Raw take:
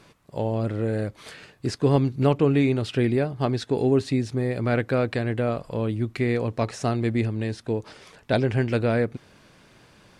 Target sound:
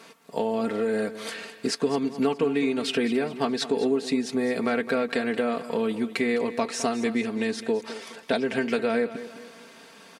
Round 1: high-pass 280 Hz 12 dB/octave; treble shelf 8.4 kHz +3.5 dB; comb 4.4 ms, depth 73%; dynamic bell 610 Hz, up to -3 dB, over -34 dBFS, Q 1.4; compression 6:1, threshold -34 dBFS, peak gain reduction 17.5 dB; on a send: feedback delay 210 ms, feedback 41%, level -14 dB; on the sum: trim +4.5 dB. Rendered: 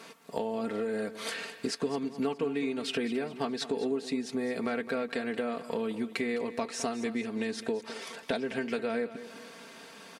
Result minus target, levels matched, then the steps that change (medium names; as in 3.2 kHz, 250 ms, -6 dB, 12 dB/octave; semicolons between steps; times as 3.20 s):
compression: peak gain reduction +7 dB
change: compression 6:1, threshold -25.5 dBFS, peak gain reduction 10.5 dB